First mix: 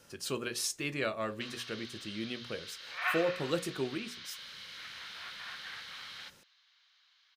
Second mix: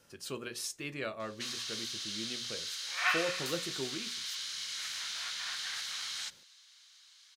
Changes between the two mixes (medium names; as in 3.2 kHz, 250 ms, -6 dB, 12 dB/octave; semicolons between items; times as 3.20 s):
speech -4.5 dB; background: remove distance through air 280 m